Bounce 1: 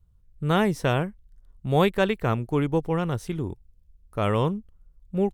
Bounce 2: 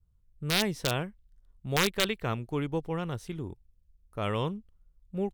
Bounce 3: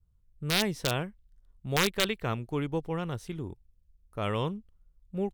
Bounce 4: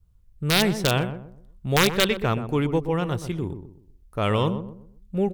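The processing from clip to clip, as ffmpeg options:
-af "aeval=exprs='(mod(3.35*val(0)+1,2)-1)/3.35':c=same,adynamicequalizer=threshold=0.0112:dfrequency=3400:dqfactor=0.81:tfrequency=3400:tqfactor=0.81:attack=5:release=100:ratio=0.375:range=3.5:mode=boostabove:tftype=bell,volume=-7.5dB"
-af anull
-filter_complex "[0:a]asoftclip=type=tanh:threshold=-15dB,asplit=2[a][b];[b]adelay=125,lowpass=f=920:p=1,volume=-9dB,asplit=2[c][d];[d]adelay=125,lowpass=f=920:p=1,volume=0.35,asplit=2[e][f];[f]adelay=125,lowpass=f=920:p=1,volume=0.35,asplit=2[g][h];[h]adelay=125,lowpass=f=920:p=1,volume=0.35[i];[c][e][g][i]amix=inputs=4:normalize=0[j];[a][j]amix=inputs=2:normalize=0,volume=8dB"

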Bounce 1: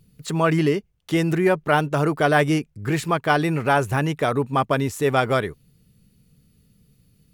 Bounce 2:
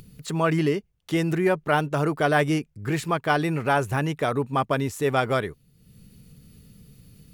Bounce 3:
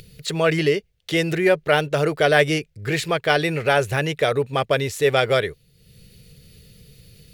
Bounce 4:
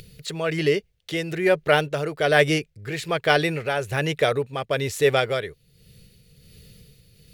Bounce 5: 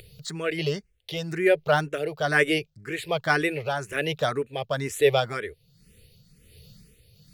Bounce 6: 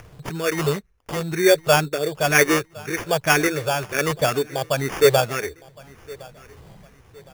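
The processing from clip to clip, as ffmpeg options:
-af "acompressor=mode=upward:threshold=-35dB:ratio=2.5,volume=-3dB"
-af "equalizer=f=250:t=o:w=1:g=-10,equalizer=f=500:t=o:w=1:g=8,equalizer=f=1k:t=o:w=1:g=-9,equalizer=f=2k:t=o:w=1:g=5,equalizer=f=4k:t=o:w=1:g=7,volume=3.5dB"
-af "tremolo=f=1.2:d=0.56"
-filter_complex "[0:a]asplit=2[a][b];[b]afreqshift=2[c];[a][c]amix=inputs=2:normalize=1"
-af "acrusher=samples=11:mix=1:aa=0.000001,aecho=1:1:1062|2124:0.075|0.027,volume=5dB"

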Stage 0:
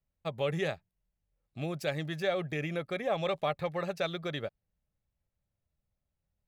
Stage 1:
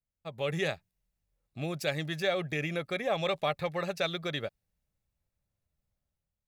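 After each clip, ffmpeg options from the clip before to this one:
-af "bandreject=f=3.1k:w=23,dynaudnorm=f=110:g=7:m=9dB,adynamicequalizer=threshold=0.0126:dfrequency=1800:dqfactor=0.7:tfrequency=1800:tqfactor=0.7:attack=5:release=100:ratio=0.375:range=2.5:mode=boostabove:tftype=highshelf,volume=-8.5dB"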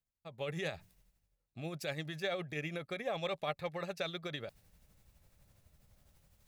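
-af "areverse,acompressor=mode=upward:threshold=-38dB:ratio=2.5,areverse,tremolo=f=12:d=0.41,volume=-5dB"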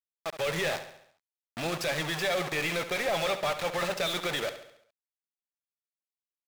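-filter_complex "[0:a]acrusher=bits=7:mix=0:aa=0.000001,asplit=2[a][b];[b]highpass=f=720:p=1,volume=26dB,asoftclip=type=tanh:threshold=-21dB[c];[a][c]amix=inputs=2:normalize=0,lowpass=f=4.6k:p=1,volume=-6dB,asplit=2[d][e];[e]aecho=0:1:69|138|207|276|345|414:0.266|0.138|0.0719|0.0374|0.0195|0.0101[f];[d][f]amix=inputs=2:normalize=0"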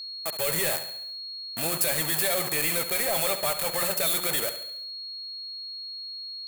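-af "aexciter=amount=11.3:drive=2.7:freq=7.8k,bandreject=f=178.7:t=h:w=4,bandreject=f=357.4:t=h:w=4,bandreject=f=536.1:t=h:w=4,bandreject=f=714.8:t=h:w=4,bandreject=f=893.5:t=h:w=4,bandreject=f=1.0722k:t=h:w=4,bandreject=f=1.2509k:t=h:w=4,bandreject=f=1.4296k:t=h:w=4,bandreject=f=1.6083k:t=h:w=4,bandreject=f=1.787k:t=h:w=4,bandreject=f=1.9657k:t=h:w=4,aeval=exprs='val(0)+0.0178*sin(2*PI*4300*n/s)':c=same"

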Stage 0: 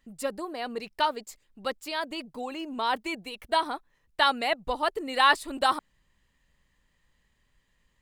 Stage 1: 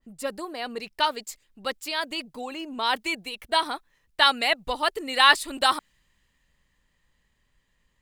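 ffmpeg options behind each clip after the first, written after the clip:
-af "adynamicequalizer=threshold=0.0126:dfrequency=1500:dqfactor=0.7:tfrequency=1500:tqfactor=0.7:attack=5:release=100:ratio=0.375:range=4:mode=boostabove:tftype=highshelf"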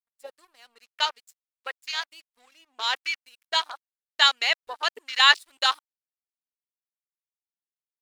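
-af "aeval=exprs='sgn(val(0))*max(abs(val(0))-0.0112,0)':c=same,tiltshelf=f=760:g=-9.5,afwtdn=0.0447,volume=-5.5dB"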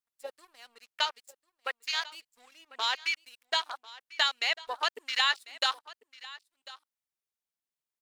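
-af "acompressor=threshold=-27dB:ratio=3,aecho=1:1:1046:0.112,volume=1dB"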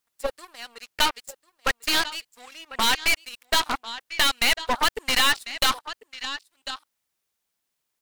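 -filter_complex "[0:a]asplit=2[a][b];[b]alimiter=limit=-19.5dB:level=0:latency=1:release=163,volume=2dB[c];[a][c]amix=inputs=2:normalize=0,aeval=exprs='0.422*(cos(1*acos(clip(val(0)/0.422,-1,1)))-cos(1*PI/2))+0.0668*(cos(8*acos(clip(val(0)/0.422,-1,1)))-cos(8*PI/2))':c=same,volume=19.5dB,asoftclip=hard,volume=-19.5dB,volume=6dB"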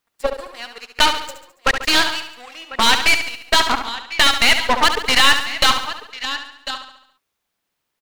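-filter_complex "[0:a]aecho=1:1:70|140|210|280|350|420:0.376|0.195|0.102|0.0528|0.0275|0.0143,asplit=2[a][b];[b]adynamicsmooth=sensitivity=5.5:basefreq=5.2k,volume=2dB[c];[a][c]amix=inputs=2:normalize=0"

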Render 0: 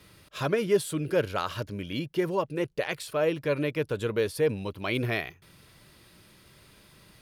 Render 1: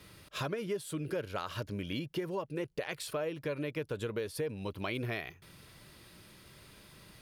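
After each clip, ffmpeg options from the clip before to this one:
-af "acompressor=threshold=-33dB:ratio=6"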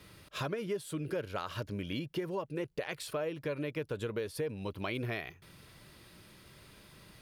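-af "equalizer=f=11k:t=o:w=2.4:g=-2"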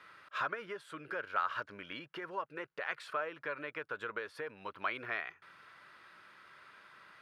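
-af "bandpass=f=1.4k:t=q:w=2.6:csg=0,volume=9.5dB"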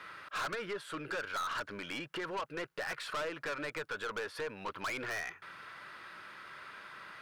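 -af "aeval=exprs='(tanh(126*val(0)+0.1)-tanh(0.1))/126':c=same,volume=8.5dB"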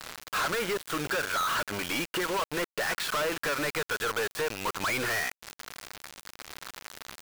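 -af "acrusher=bits=6:mix=0:aa=0.000001,volume=9dB"

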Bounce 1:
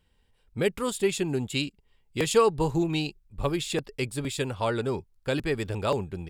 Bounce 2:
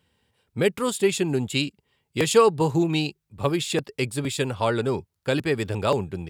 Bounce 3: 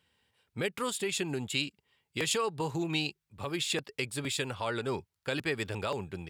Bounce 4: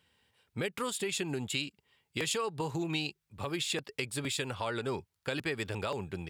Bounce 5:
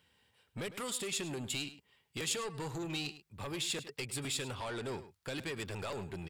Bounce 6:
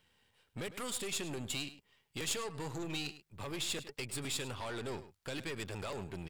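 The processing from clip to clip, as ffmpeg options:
-af "highpass=f=83:w=0.5412,highpass=f=83:w=1.3066,volume=4dB"
-af "highshelf=f=3.4k:g=-8.5,alimiter=limit=-17.5dB:level=0:latency=1:release=137,tiltshelf=f=1.1k:g=-6.5,volume=-2.5dB"
-af "acompressor=threshold=-35dB:ratio=2,volume=2dB"
-filter_complex "[0:a]acrossover=split=4300[a][b];[a]asoftclip=type=tanh:threshold=-36dB[c];[c][b]amix=inputs=2:normalize=0,asplit=2[d][e];[e]adelay=105,volume=-14dB,highshelf=f=4k:g=-2.36[f];[d][f]amix=inputs=2:normalize=0"
-af "aeval=exprs='if(lt(val(0),0),0.447*val(0),val(0))':c=same,volume=1.5dB"

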